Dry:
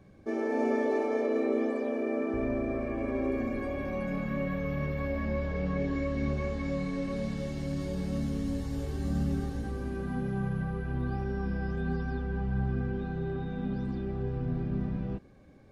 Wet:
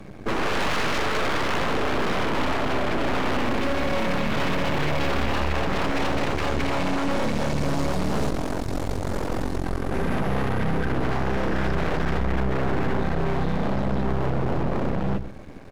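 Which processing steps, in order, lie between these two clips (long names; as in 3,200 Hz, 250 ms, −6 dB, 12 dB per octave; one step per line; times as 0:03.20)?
mains-hum notches 60/120/180 Hz
sine wavefolder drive 15 dB, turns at −17 dBFS
0:08.29–0:09.92: ring modulation 22 Hz
half-wave rectification
single-tap delay 123 ms −14.5 dB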